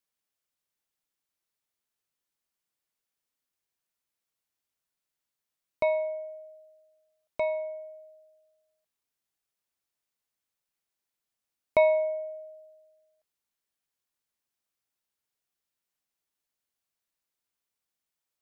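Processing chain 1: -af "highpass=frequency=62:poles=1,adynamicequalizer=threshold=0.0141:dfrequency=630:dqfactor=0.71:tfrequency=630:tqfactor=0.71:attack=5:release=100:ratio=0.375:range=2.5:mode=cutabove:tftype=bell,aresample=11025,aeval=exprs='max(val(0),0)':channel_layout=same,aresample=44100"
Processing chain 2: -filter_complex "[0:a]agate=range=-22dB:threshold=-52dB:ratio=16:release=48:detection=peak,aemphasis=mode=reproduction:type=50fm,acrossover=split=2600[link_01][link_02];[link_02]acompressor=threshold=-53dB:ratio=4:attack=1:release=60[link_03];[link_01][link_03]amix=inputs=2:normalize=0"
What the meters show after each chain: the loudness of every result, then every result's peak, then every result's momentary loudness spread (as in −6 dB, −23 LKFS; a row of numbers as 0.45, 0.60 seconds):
−34.5, −28.5 LKFS; −14.0, −13.5 dBFS; 22, 21 LU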